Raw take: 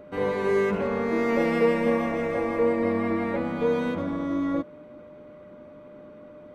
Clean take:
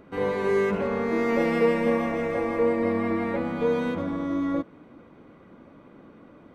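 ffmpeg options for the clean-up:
-af "bandreject=f=600:w=30"

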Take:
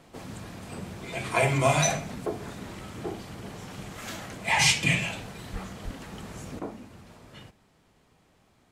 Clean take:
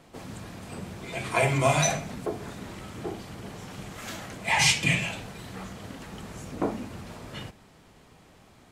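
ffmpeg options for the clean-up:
-filter_complex "[0:a]asplit=3[s0][s1][s2];[s0]afade=t=out:st=5.52:d=0.02[s3];[s1]highpass=f=140:w=0.5412,highpass=f=140:w=1.3066,afade=t=in:st=5.52:d=0.02,afade=t=out:st=5.64:d=0.02[s4];[s2]afade=t=in:st=5.64:d=0.02[s5];[s3][s4][s5]amix=inputs=3:normalize=0,asplit=3[s6][s7][s8];[s6]afade=t=out:st=5.84:d=0.02[s9];[s7]highpass=f=140:w=0.5412,highpass=f=140:w=1.3066,afade=t=in:st=5.84:d=0.02,afade=t=out:st=5.96:d=0.02[s10];[s8]afade=t=in:st=5.96:d=0.02[s11];[s9][s10][s11]amix=inputs=3:normalize=0,asetnsamples=n=441:p=0,asendcmd='6.59 volume volume 8.5dB',volume=1"

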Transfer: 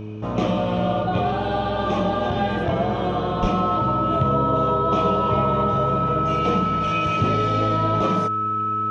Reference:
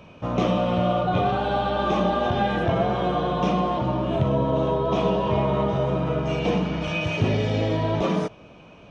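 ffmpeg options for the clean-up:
-filter_complex "[0:a]bandreject=f=106.5:t=h:w=4,bandreject=f=213:t=h:w=4,bandreject=f=319.5:t=h:w=4,bandreject=f=426:t=h:w=4,bandreject=f=1300:w=30,asplit=3[s0][s1][s2];[s0]afade=t=out:st=3.41:d=0.02[s3];[s1]highpass=f=140:w=0.5412,highpass=f=140:w=1.3066,afade=t=in:st=3.41:d=0.02,afade=t=out:st=3.53:d=0.02[s4];[s2]afade=t=in:st=3.53:d=0.02[s5];[s3][s4][s5]amix=inputs=3:normalize=0"

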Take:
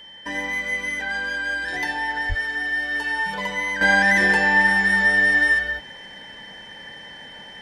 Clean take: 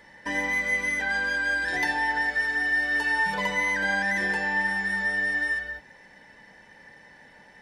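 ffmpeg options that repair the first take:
-filter_complex "[0:a]bandreject=f=3100:w=30,asplit=3[s0][s1][s2];[s0]afade=t=out:st=2.28:d=0.02[s3];[s1]highpass=f=140:w=0.5412,highpass=f=140:w=1.3066,afade=t=in:st=2.28:d=0.02,afade=t=out:st=2.4:d=0.02[s4];[s2]afade=t=in:st=2.4:d=0.02[s5];[s3][s4][s5]amix=inputs=3:normalize=0,asetnsamples=n=441:p=0,asendcmd='3.81 volume volume -9dB',volume=1"

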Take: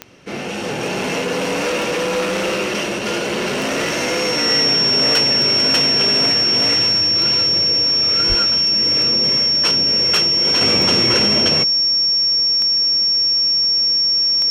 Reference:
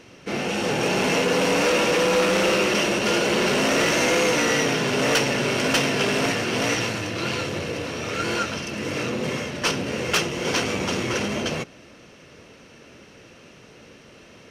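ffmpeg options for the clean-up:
-filter_complex "[0:a]adeclick=t=4,bandreject=f=5500:w=30,asplit=3[s0][s1][s2];[s0]afade=t=out:st=8.28:d=0.02[s3];[s1]highpass=f=140:w=0.5412,highpass=f=140:w=1.3066,afade=t=in:st=8.28:d=0.02,afade=t=out:st=8.4:d=0.02[s4];[s2]afade=t=in:st=8.4:d=0.02[s5];[s3][s4][s5]amix=inputs=3:normalize=0,asetnsamples=n=441:p=0,asendcmd='10.61 volume volume -6dB',volume=1"

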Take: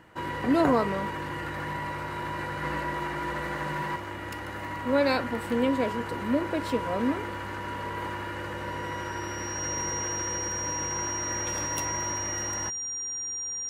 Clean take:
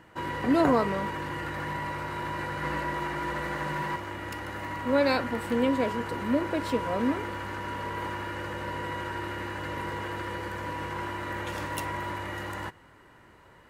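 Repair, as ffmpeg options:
-af "bandreject=f=5700:w=30"

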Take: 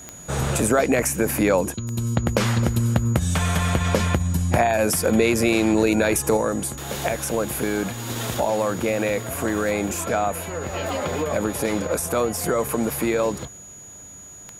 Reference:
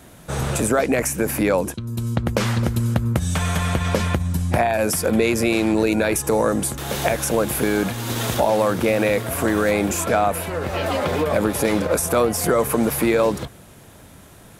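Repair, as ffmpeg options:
-af "adeclick=t=4,bandreject=f=6800:w=30,asetnsamples=n=441:p=0,asendcmd='6.37 volume volume 4dB',volume=1"

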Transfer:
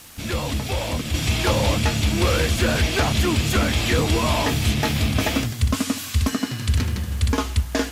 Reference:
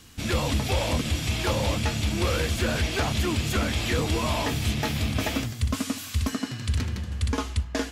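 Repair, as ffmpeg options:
-af "adeclick=t=4,afwtdn=0.0063,asetnsamples=n=441:p=0,asendcmd='1.14 volume volume -5.5dB',volume=1"

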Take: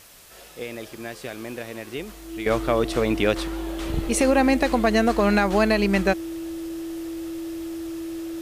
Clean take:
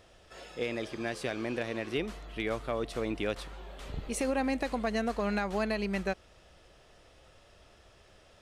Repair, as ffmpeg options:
-af "bandreject=f=330:w=30,afwtdn=0.004,asetnsamples=n=441:p=0,asendcmd='2.46 volume volume -11.5dB',volume=1"

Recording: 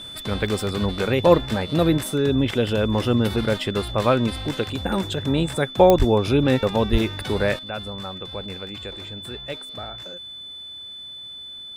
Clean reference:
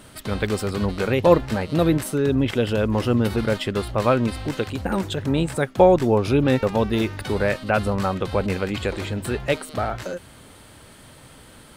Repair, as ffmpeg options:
-filter_complex "[0:a]adeclick=t=4,bandreject=f=3500:w=30,asplit=3[s0][s1][s2];[s0]afade=t=out:st=5.98:d=0.02[s3];[s1]highpass=f=140:w=0.5412,highpass=f=140:w=1.3066,afade=t=in:st=5.98:d=0.02,afade=t=out:st=6.1:d=0.02[s4];[s2]afade=t=in:st=6.1:d=0.02[s5];[s3][s4][s5]amix=inputs=3:normalize=0,asplit=3[s6][s7][s8];[s6]afade=t=out:st=6.91:d=0.02[s9];[s7]highpass=f=140:w=0.5412,highpass=f=140:w=1.3066,afade=t=in:st=6.91:d=0.02,afade=t=out:st=7.03:d=0.02[s10];[s8]afade=t=in:st=7.03:d=0.02[s11];[s9][s10][s11]amix=inputs=3:normalize=0,asetnsamples=n=441:p=0,asendcmd='7.59 volume volume 11dB',volume=1"

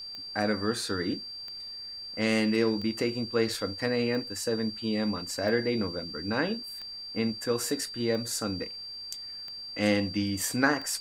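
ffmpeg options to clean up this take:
-af "adeclick=t=4,bandreject=f=4700:w=30,agate=range=0.0891:threshold=0.0224"

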